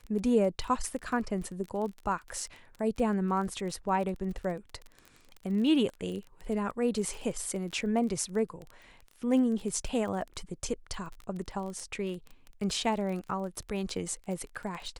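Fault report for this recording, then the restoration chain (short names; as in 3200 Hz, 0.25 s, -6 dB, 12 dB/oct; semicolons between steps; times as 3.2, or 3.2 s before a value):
crackle 23/s -36 dBFS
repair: de-click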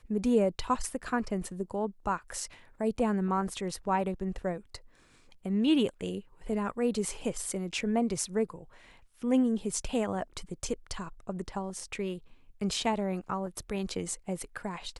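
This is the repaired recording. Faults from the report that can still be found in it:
none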